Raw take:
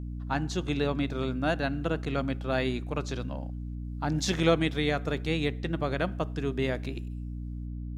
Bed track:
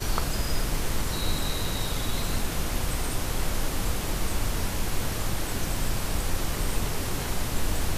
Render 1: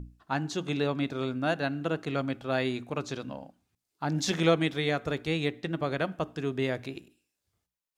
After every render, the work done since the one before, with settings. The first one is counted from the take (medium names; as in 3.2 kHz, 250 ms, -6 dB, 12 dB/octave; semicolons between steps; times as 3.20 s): hum notches 60/120/180/240/300 Hz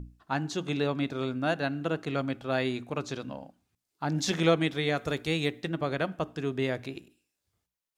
4.95–5.68 s: treble shelf 4.2 kHz -> 6.5 kHz +8.5 dB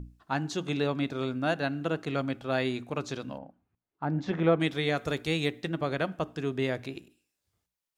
3.38–4.60 s: low-pass 1.6 kHz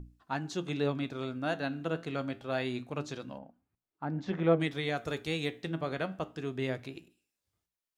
flange 0.26 Hz, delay 2.6 ms, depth 9.8 ms, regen +77%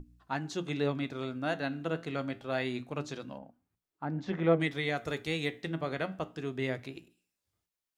dynamic bell 2 kHz, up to +6 dB, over -58 dBFS, Q 7.8; hum notches 60/120/180 Hz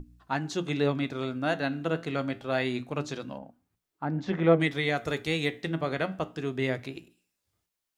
trim +4.5 dB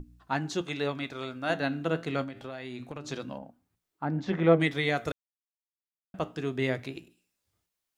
0.61–1.50 s: peaking EQ 180 Hz -8 dB 2.9 oct; 2.23–3.12 s: compression 16:1, threshold -34 dBFS; 5.12–6.14 s: mute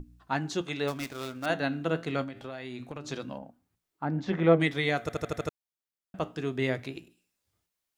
0.87–1.46 s: dead-time distortion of 0.12 ms; 5.01 s: stutter in place 0.08 s, 6 plays